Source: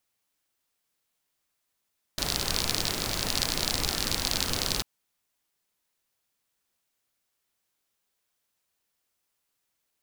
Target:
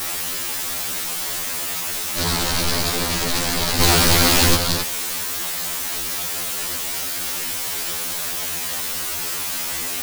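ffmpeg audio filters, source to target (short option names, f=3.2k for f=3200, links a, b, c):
-filter_complex "[0:a]aeval=exprs='val(0)+0.5*0.0841*sgn(val(0))':c=same,asettb=1/sr,asplit=3[a][b][c];[a]atrim=end=3.804[d];[b]atrim=start=3.8:end=4.56,asetpts=PTS-STARTPTS,afade=t=in:d=0.004:c=qsin,afade=t=out:st=0.756:d=0.004:c=qsin,acontrast=72[e];[c]atrim=start=4.556[f];[d][e]acrossfade=d=0.004:c1=hsin:c2=qsin[g];[g][f]acrossfade=d=0.004:c1=qsin:c2=hsin,afftfilt=real='re*2*eq(mod(b,4),0)':imag='im*2*eq(mod(b,4),0)':win_size=2048:overlap=0.75,volume=4.5dB"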